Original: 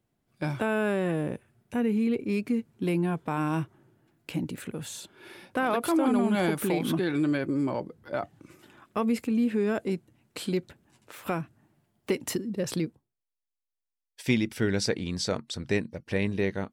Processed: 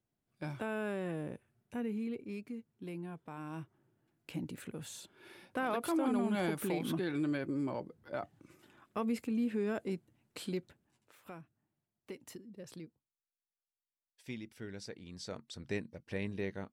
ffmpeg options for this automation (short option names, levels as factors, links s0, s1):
-af "volume=2.11,afade=t=out:st=1.75:d=0.8:silence=0.501187,afade=t=in:st=3.43:d=1.14:silence=0.375837,afade=t=out:st=10.41:d=0.81:silence=0.281838,afade=t=in:st=15:d=0.72:silence=0.375837"